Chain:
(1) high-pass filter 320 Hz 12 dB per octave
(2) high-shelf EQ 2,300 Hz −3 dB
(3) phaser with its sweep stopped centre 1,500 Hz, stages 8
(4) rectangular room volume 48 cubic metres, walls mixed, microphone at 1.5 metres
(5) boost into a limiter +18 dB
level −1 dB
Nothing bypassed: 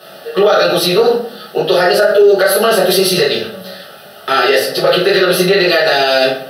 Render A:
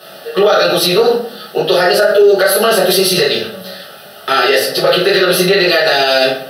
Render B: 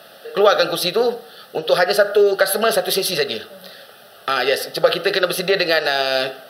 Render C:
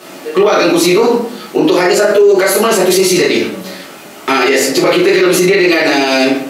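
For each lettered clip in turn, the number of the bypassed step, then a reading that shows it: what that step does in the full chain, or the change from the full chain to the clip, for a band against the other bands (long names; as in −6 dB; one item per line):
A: 2, 8 kHz band +2.0 dB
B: 4, change in crest factor +6.5 dB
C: 3, 250 Hz band +6.5 dB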